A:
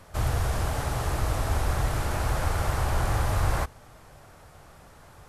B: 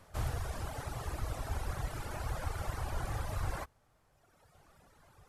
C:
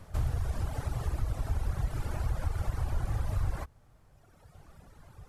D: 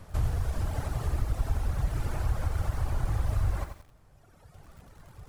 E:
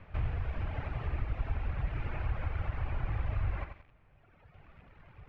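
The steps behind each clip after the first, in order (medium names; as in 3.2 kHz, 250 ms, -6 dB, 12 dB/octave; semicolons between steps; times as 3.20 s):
reverb removal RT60 1.8 s; trim -8 dB
compression 2.5:1, threshold -41 dBFS, peak gain reduction 8.5 dB; bass shelf 260 Hz +11 dB; trim +2.5 dB
bit-crushed delay 88 ms, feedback 35%, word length 9-bit, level -7.5 dB; trim +2 dB
four-pole ladder low-pass 2.8 kHz, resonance 55%; trim +5 dB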